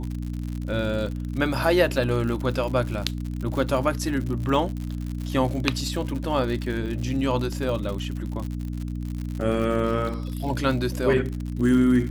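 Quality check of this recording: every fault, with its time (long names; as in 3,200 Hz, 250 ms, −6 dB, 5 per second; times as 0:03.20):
surface crackle 82 per second −30 dBFS
mains hum 60 Hz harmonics 5 −30 dBFS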